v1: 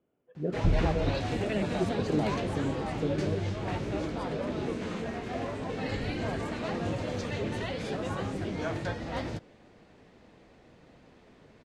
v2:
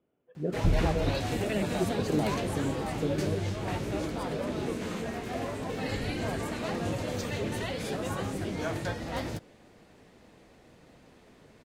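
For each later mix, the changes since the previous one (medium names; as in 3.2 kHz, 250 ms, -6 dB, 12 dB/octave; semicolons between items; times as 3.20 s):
master: remove distance through air 76 m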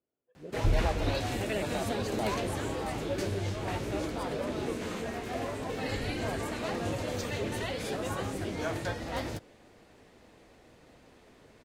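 speech -12.0 dB; master: add peaking EQ 170 Hz -5 dB 0.89 oct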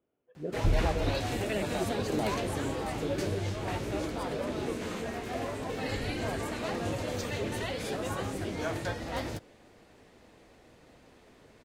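speech +8.5 dB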